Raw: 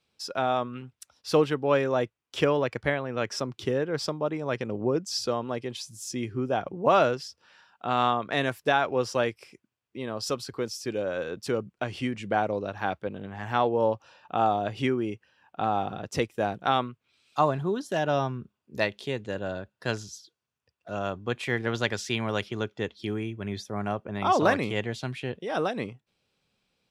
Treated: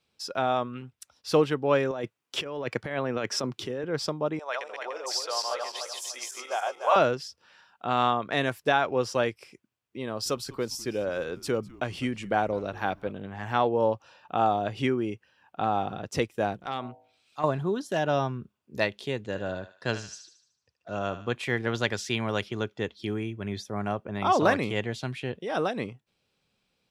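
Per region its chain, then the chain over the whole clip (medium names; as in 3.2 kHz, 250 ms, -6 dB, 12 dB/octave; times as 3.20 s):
1.91–3.84 s: high-pass 130 Hz + compressor with a negative ratio -31 dBFS
4.39–6.96 s: backward echo that repeats 148 ms, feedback 55%, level -1 dB + high-pass 650 Hz 24 dB/octave
10.05–13.12 s: treble shelf 9.9 kHz +7.5 dB + frequency-shifting echo 202 ms, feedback 42%, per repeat -150 Hz, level -22 dB
16.56–17.44 s: transient shaper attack -10 dB, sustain -2 dB + de-hum 54.47 Hz, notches 17 + compression 3:1, threshold -28 dBFS
19.26–21.35 s: low-pass 8.7 kHz 24 dB/octave + thinning echo 75 ms, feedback 50%, high-pass 920 Hz, level -9.5 dB
whole clip: none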